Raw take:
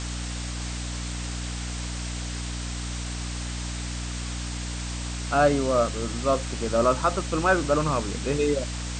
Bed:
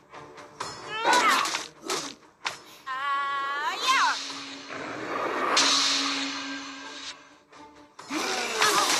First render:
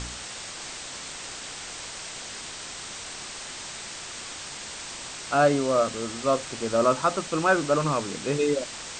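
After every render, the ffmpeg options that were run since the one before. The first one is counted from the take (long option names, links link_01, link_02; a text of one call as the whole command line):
ffmpeg -i in.wav -af "bandreject=frequency=60:width_type=h:width=4,bandreject=frequency=120:width_type=h:width=4,bandreject=frequency=180:width_type=h:width=4,bandreject=frequency=240:width_type=h:width=4,bandreject=frequency=300:width_type=h:width=4" out.wav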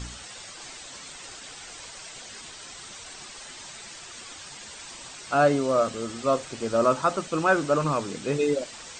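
ffmpeg -i in.wav -af "afftdn=noise_reduction=9:noise_floor=-39" out.wav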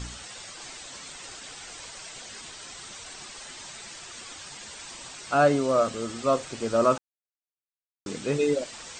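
ffmpeg -i in.wav -filter_complex "[0:a]asplit=3[link_01][link_02][link_03];[link_01]atrim=end=6.98,asetpts=PTS-STARTPTS,afade=type=out:start_time=6.976:duration=0.004:curve=hsin[link_04];[link_02]atrim=start=6.98:end=8.06,asetpts=PTS-STARTPTS,volume=0[link_05];[link_03]atrim=start=8.06,asetpts=PTS-STARTPTS,afade=type=in:duration=0.004:curve=hsin[link_06];[link_04][link_05][link_06]concat=n=3:v=0:a=1" out.wav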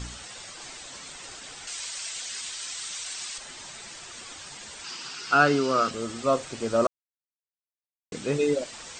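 ffmpeg -i in.wav -filter_complex "[0:a]asettb=1/sr,asplit=3[link_01][link_02][link_03];[link_01]atrim=end=1.674[link_04];[link_02]atrim=start=1.67:end=3.38,asetpts=PTS-STARTPTS,afade=type=in:duration=0.004:curve=qsin,afade=type=out:start_time=1.706:duration=0.004:curve=qsin,tiltshelf=frequency=1200:gain=-8.5[link_05];[link_03]atrim=start=3.376[link_06];[link_04][link_05]acrossfade=duration=0.004:curve1=hsin:curve2=qsin[link_07];[link_07][link_06]acrossfade=duration=0.004:curve1=qsin:curve2=hsin,asettb=1/sr,asplit=3[link_08][link_09][link_10];[link_08]atrim=end=4.844[link_11];[link_09]atrim=start=4.84:end=5.91,asetpts=PTS-STARTPTS,afade=type=in:duration=0.004:curve=qsin,afade=type=out:start_time=1.066:duration=0.004:curve=qsin,highpass=frequency=120:width=0.5412,highpass=frequency=120:width=1.3066,equalizer=frequency=410:width_type=q:width=4:gain=4,equalizer=frequency=590:width_type=q:width=4:gain=-9,equalizer=frequency=1400:width_type=q:width=4:gain=9,equalizer=frequency=2800:width_type=q:width=4:gain=7,equalizer=frequency=4900:width_type=q:width=4:gain=10,lowpass=frequency=7800:width=0.5412,lowpass=frequency=7800:width=1.3066[link_12];[link_10]atrim=start=5.906[link_13];[link_11][link_12]acrossfade=duration=0.004:curve1=hsin:curve2=qsin[link_14];[link_14][link_13]acrossfade=duration=0.004:curve1=qsin:curve2=hsin,asplit=3[link_15][link_16][link_17];[link_15]atrim=end=6.87,asetpts=PTS-STARTPTS,afade=type=out:start_time=6.866:duration=0.004:curve=hsin[link_18];[link_16]atrim=start=6.87:end=8.12,asetpts=PTS-STARTPTS,volume=0[link_19];[link_17]atrim=start=8.12,asetpts=PTS-STARTPTS,afade=type=in:duration=0.004:curve=hsin[link_20];[link_18][link_19][link_20]concat=n=3:v=0:a=1" out.wav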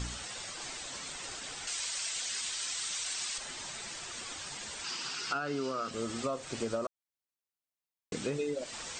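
ffmpeg -i in.wav -af "alimiter=limit=-17dB:level=0:latency=1:release=247,acompressor=threshold=-31dB:ratio=6" out.wav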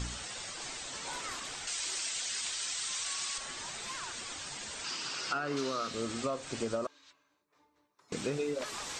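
ffmpeg -i in.wav -i bed.wav -filter_complex "[1:a]volume=-22dB[link_01];[0:a][link_01]amix=inputs=2:normalize=0" out.wav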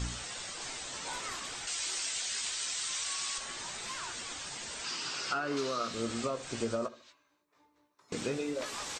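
ffmpeg -i in.wav -filter_complex "[0:a]asplit=2[link_01][link_02];[link_02]adelay=17,volume=-8.5dB[link_03];[link_01][link_03]amix=inputs=2:normalize=0,asplit=2[link_04][link_05];[link_05]adelay=74,lowpass=frequency=2000:poles=1,volume=-17dB,asplit=2[link_06][link_07];[link_07]adelay=74,lowpass=frequency=2000:poles=1,volume=0.34,asplit=2[link_08][link_09];[link_09]adelay=74,lowpass=frequency=2000:poles=1,volume=0.34[link_10];[link_04][link_06][link_08][link_10]amix=inputs=4:normalize=0" out.wav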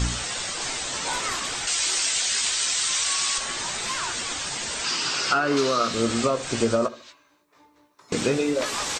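ffmpeg -i in.wav -af "volume=11.5dB" out.wav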